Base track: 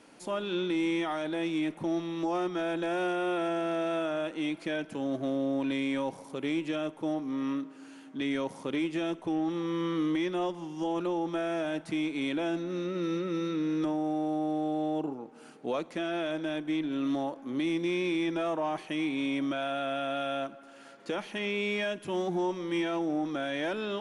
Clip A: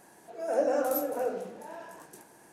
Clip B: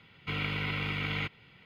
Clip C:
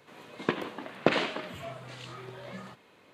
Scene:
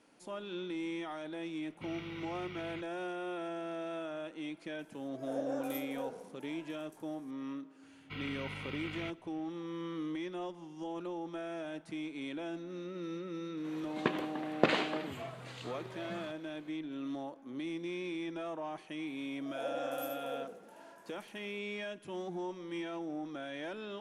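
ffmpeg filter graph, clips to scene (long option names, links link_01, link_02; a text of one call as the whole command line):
ffmpeg -i bed.wav -i cue0.wav -i cue1.wav -i cue2.wav -filter_complex "[2:a]asplit=2[link_01][link_02];[1:a]asplit=2[link_03][link_04];[0:a]volume=-9.5dB[link_05];[link_01]highpass=41[link_06];[link_02]acontrast=79[link_07];[link_04]aecho=1:1:76:0.596[link_08];[link_06]atrim=end=1.65,asetpts=PTS-STARTPTS,volume=-15dB,afade=type=in:duration=0.004:curve=hsin,afade=type=out:start_time=1.646:duration=0.004:curve=hsin,adelay=1540[link_09];[link_03]atrim=end=2.52,asetpts=PTS-STARTPTS,volume=-12dB,afade=type=in:duration=0.004:curve=hsin,afade=type=out:start_time=2.516:duration=0.004:curve=hsin,adelay=4790[link_10];[link_07]atrim=end=1.65,asetpts=PTS-STARTPTS,volume=-17dB,afade=type=in:duration=0.004:curve=hsin,afade=type=out:start_time=1.646:duration=0.004:curve=hsin,adelay=7830[link_11];[3:a]atrim=end=3.13,asetpts=PTS-STARTPTS,volume=-3dB,afade=type=in:duration=0.004:curve=hsin,afade=type=out:start_time=3.126:duration=0.004:curve=hsin,adelay=13570[link_12];[link_08]atrim=end=2.52,asetpts=PTS-STARTPTS,volume=-13.5dB,afade=type=in:duration=0.004:curve=hsin,afade=type=out:start_time=2.516:duration=0.004:curve=hsin,adelay=19070[link_13];[link_05][link_09][link_10][link_11][link_12][link_13]amix=inputs=6:normalize=0" out.wav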